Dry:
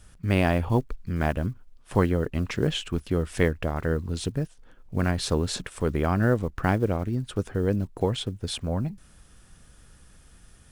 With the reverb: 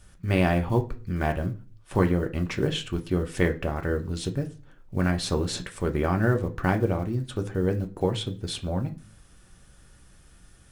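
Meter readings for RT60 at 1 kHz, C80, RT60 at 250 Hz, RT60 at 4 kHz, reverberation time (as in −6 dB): 0.35 s, 22.0 dB, 0.50 s, 0.40 s, 0.40 s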